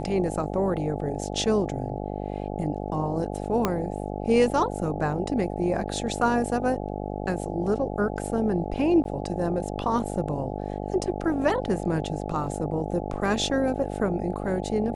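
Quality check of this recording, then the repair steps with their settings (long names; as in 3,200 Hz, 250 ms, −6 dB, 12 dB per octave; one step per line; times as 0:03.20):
mains buzz 50 Hz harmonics 17 −32 dBFS
0:03.65: click −9 dBFS
0:09.04–0:09.05: drop-out 12 ms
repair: click removal
hum removal 50 Hz, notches 17
repair the gap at 0:09.04, 12 ms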